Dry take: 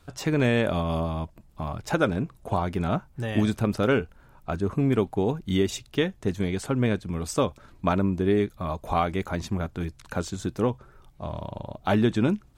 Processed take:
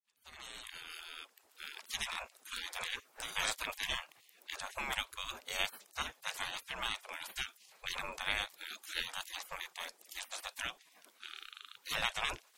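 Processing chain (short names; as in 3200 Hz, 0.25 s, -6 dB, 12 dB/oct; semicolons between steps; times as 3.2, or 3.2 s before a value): opening faded in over 1.81 s; spectral gate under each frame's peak -30 dB weak; gain +8.5 dB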